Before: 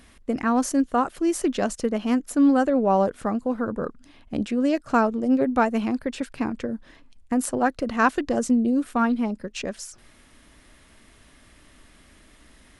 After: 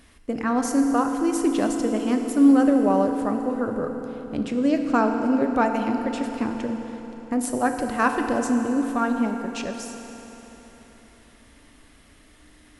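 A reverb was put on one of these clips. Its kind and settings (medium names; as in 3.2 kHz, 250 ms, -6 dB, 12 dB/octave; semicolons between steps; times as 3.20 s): FDN reverb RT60 4 s, high-frequency decay 0.8×, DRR 4 dB; trim -1.5 dB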